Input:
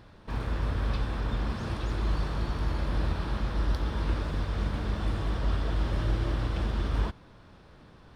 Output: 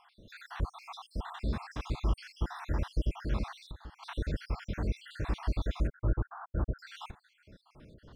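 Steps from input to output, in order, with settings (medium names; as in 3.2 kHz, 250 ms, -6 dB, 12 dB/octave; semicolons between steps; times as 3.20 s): random holes in the spectrogram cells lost 63%; 3.62–4.03 s: compression 8:1, threshold -42 dBFS, peak gain reduction 17 dB; 5.87–6.79 s: steep low-pass 1.5 kHz 72 dB/octave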